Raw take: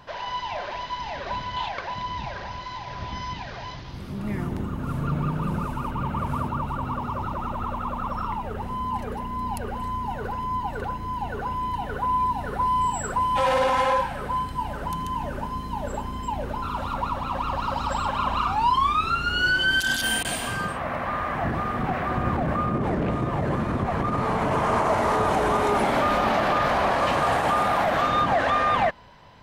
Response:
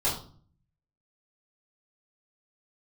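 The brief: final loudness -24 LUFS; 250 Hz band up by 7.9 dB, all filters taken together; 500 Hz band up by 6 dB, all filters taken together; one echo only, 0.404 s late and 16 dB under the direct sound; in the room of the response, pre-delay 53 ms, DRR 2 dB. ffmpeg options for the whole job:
-filter_complex "[0:a]equalizer=f=250:t=o:g=8.5,equalizer=f=500:t=o:g=5.5,aecho=1:1:404:0.158,asplit=2[a][b];[1:a]atrim=start_sample=2205,adelay=53[c];[b][c]afir=irnorm=-1:irlink=0,volume=-11.5dB[d];[a][d]amix=inputs=2:normalize=0,volume=-5dB"

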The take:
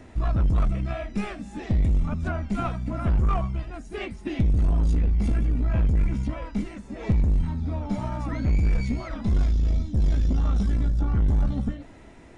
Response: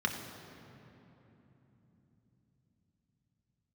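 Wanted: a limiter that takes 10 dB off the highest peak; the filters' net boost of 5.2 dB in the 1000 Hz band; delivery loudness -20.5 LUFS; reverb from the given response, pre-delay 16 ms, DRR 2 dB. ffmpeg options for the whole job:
-filter_complex "[0:a]equalizer=f=1k:t=o:g=7,alimiter=limit=-22dB:level=0:latency=1,asplit=2[a][b];[1:a]atrim=start_sample=2205,adelay=16[c];[b][c]afir=irnorm=-1:irlink=0,volume=-9dB[d];[a][d]amix=inputs=2:normalize=0,volume=7.5dB"

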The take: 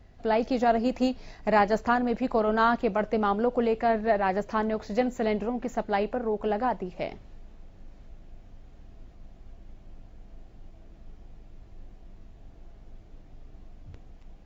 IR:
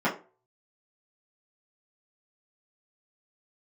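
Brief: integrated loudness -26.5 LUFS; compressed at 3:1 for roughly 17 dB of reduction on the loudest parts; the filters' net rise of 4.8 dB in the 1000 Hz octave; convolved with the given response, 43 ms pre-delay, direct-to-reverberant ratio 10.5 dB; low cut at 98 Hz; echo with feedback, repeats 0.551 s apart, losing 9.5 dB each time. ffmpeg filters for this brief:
-filter_complex "[0:a]highpass=98,equalizer=f=1k:t=o:g=6.5,acompressor=threshold=-37dB:ratio=3,aecho=1:1:551|1102|1653|2204:0.335|0.111|0.0365|0.012,asplit=2[a][b];[1:a]atrim=start_sample=2205,adelay=43[c];[b][c]afir=irnorm=-1:irlink=0,volume=-24dB[d];[a][d]amix=inputs=2:normalize=0,volume=10dB"

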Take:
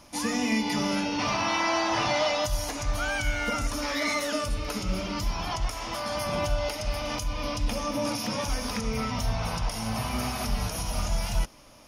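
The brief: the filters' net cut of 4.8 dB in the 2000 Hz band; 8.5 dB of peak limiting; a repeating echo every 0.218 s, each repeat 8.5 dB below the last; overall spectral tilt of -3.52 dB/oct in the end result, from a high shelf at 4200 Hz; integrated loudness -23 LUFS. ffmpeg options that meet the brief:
-af "equalizer=f=2k:t=o:g=-7.5,highshelf=f=4.2k:g=6,alimiter=limit=-23.5dB:level=0:latency=1,aecho=1:1:218|436|654|872:0.376|0.143|0.0543|0.0206,volume=8.5dB"

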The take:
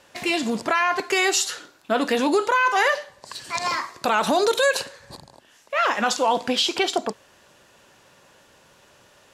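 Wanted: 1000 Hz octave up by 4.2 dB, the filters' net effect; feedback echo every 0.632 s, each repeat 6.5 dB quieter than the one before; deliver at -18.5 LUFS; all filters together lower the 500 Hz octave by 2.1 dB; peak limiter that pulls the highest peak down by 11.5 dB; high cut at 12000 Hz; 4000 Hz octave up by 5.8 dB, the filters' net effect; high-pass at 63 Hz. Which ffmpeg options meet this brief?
-af "highpass=63,lowpass=12k,equalizer=f=500:t=o:g=-4.5,equalizer=f=1k:t=o:g=6,equalizer=f=4k:t=o:g=7,alimiter=limit=-15dB:level=0:latency=1,aecho=1:1:632|1264|1896|2528|3160|3792:0.473|0.222|0.105|0.0491|0.0231|0.0109,volume=6dB"

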